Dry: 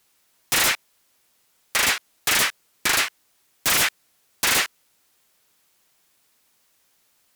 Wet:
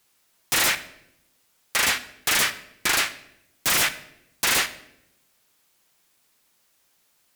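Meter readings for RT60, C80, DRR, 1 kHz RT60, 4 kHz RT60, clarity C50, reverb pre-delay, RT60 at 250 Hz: 0.80 s, 17.0 dB, 10.5 dB, 0.70 s, 0.65 s, 15.0 dB, 6 ms, 1.2 s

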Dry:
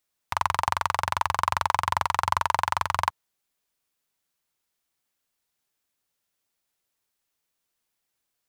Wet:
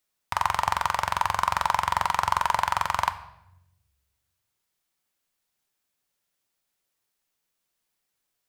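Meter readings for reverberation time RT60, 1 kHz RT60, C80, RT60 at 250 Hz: 0.85 s, 0.75 s, 17.0 dB, 1.3 s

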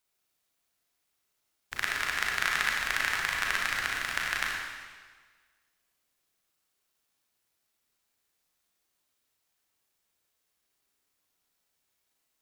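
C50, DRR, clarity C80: 0.0 dB, −2.0 dB, 2.0 dB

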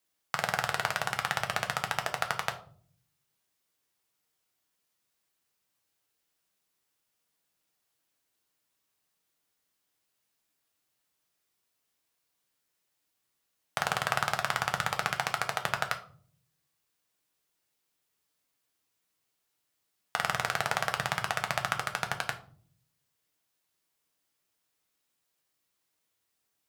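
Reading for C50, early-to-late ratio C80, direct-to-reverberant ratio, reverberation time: 13.0 dB, 16.5 dB, 4.5 dB, 0.50 s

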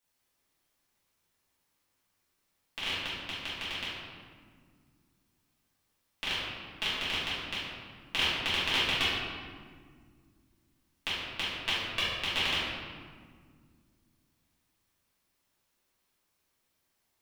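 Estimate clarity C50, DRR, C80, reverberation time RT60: −2.0 dB, −12.0 dB, 0.5 dB, 1.9 s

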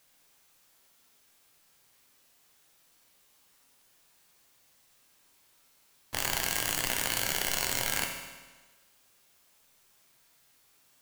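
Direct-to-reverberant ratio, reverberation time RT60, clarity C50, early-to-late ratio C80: 2.5 dB, 1.3 s, 5.0 dB, 6.5 dB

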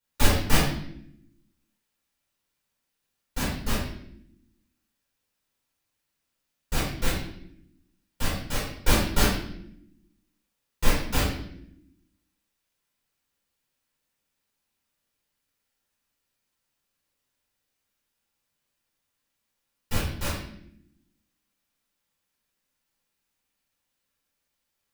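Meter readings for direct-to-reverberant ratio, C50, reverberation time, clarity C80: −11.0 dB, 1.5 dB, non-exponential decay, 6.0 dB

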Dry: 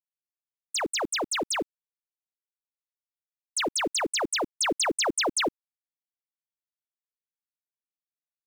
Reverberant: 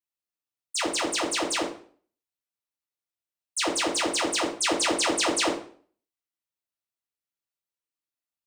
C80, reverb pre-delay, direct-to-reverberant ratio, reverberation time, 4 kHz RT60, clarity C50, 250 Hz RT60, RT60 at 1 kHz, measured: 11.5 dB, 3 ms, −3.5 dB, 0.50 s, 0.40 s, 7.5 dB, 0.50 s, 0.45 s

